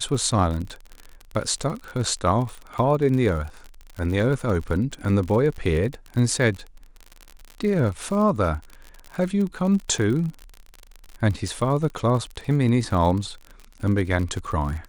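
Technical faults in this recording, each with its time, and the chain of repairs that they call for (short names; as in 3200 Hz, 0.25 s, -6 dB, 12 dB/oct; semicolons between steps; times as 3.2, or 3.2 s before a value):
crackle 48/s -29 dBFS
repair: de-click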